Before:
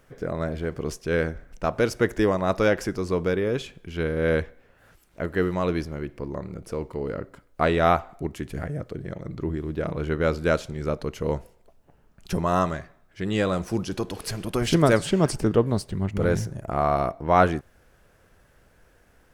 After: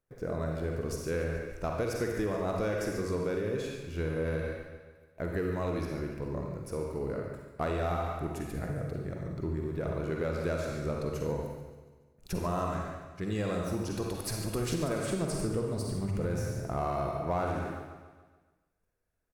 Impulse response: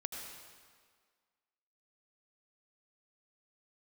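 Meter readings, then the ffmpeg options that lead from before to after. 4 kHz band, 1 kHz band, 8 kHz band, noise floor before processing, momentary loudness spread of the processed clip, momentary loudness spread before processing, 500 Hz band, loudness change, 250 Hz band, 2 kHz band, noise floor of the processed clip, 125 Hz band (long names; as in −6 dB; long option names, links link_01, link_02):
−9.5 dB, −10.0 dB, −4.0 dB, −60 dBFS, 6 LU, 13 LU, −8.0 dB, −8.0 dB, −8.0 dB, −10.5 dB, −70 dBFS, −6.0 dB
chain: -filter_complex "[0:a]bandreject=frequency=3100:width=8.5,asplit=2[link_01][link_02];[link_02]asoftclip=type=hard:threshold=-20.5dB,volume=-5.5dB[link_03];[link_01][link_03]amix=inputs=2:normalize=0,equalizer=frequency=230:width_type=o:width=0.86:gain=-2,agate=range=-22dB:threshold=-47dB:ratio=16:detection=peak,crystalizer=i=7:c=0,tiltshelf=frequency=1500:gain=9[link_04];[1:a]atrim=start_sample=2205,asetrate=79380,aresample=44100[link_05];[link_04][link_05]afir=irnorm=-1:irlink=0,acompressor=threshold=-19dB:ratio=6,aecho=1:1:143|286|429|572|715|858:0.2|0.112|0.0626|0.035|0.0196|0.011,volume=-9dB"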